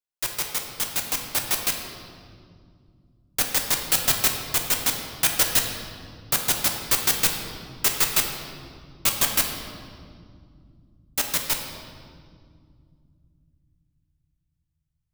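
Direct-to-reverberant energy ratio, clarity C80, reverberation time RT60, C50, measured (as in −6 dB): 2.0 dB, 6.0 dB, 2.2 s, 5.0 dB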